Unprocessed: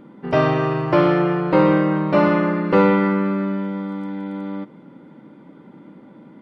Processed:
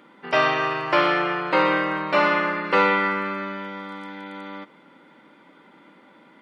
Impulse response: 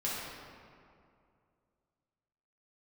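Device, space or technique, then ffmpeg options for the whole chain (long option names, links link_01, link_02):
filter by subtraction: -filter_complex "[0:a]asplit=2[link_01][link_02];[link_02]lowpass=2300,volume=-1[link_03];[link_01][link_03]amix=inputs=2:normalize=0,volume=4.5dB"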